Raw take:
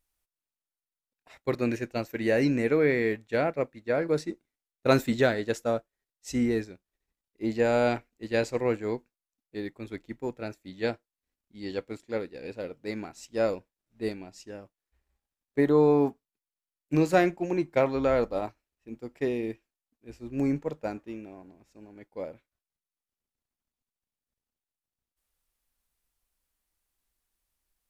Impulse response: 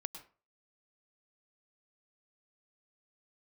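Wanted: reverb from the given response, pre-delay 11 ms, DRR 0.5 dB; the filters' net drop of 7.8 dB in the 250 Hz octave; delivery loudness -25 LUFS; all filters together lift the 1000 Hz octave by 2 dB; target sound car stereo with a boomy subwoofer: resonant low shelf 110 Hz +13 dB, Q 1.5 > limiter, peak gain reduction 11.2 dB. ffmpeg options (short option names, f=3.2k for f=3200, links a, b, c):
-filter_complex "[0:a]equalizer=f=250:t=o:g=-8.5,equalizer=f=1k:t=o:g=4,asplit=2[a][b];[1:a]atrim=start_sample=2205,adelay=11[c];[b][c]afir=irnorm=-1:irlink=0,volume=1.5dB[d];[a][d]amix=inputs=2:normalize=0,lowshelf=f=110:t=q:w=1.5:g=13,volume=4.5dB,alimiter=limit=-11dB:level=0:latency=1"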